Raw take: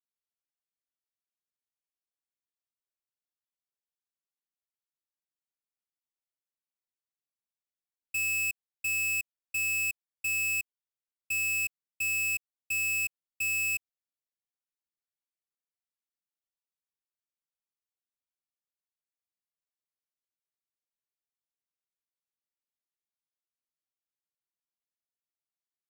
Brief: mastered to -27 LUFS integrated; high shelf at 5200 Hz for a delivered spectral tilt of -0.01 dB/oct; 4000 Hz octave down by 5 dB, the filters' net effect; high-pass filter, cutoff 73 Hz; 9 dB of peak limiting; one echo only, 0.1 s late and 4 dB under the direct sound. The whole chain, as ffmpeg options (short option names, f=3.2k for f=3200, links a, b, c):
-af "highpass=73,equalizer=f=4k:t=o:g=-4,highshelf=f=5.2k:g=-5.5,alimiter=level_in=13.5dB:limit=-24dB:level=0:latency=1,volume=-13.5dB,aecho=1:1:100:0.631,volume=10.5dB"